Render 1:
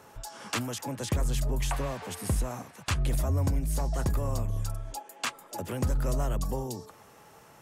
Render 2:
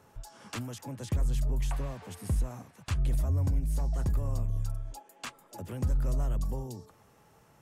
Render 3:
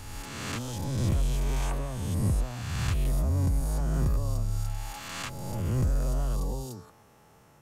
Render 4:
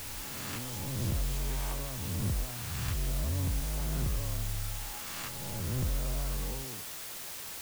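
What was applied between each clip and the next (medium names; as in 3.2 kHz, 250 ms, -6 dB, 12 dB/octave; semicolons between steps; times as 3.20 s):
bass shelf 210 Hz +10 dB; trim -9 dB
reverse spectral sustain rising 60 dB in 1.81 s
word length cut 6-bit, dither triangular; trim -6 dB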